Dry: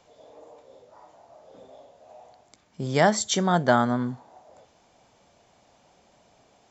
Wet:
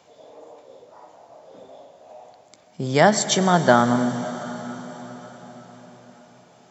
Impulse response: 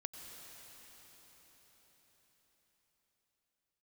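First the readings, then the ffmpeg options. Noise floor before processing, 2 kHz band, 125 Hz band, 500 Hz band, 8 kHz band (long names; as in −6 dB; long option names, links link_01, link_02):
−62 dBFS, +4.5 dB, +3.5 dB, +5.0 dB, can't be measured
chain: -filter_complex "[0:a]highpass=110,asplit=2[link_01][link_02];[1:a]atrim=start_sample=2205[link_03];[link_02][link_03]afir=irnorm=-1:irlink=0,volume=0.5dB[link_04];[link_01][link_04]amix=inputs=2:normalize=0"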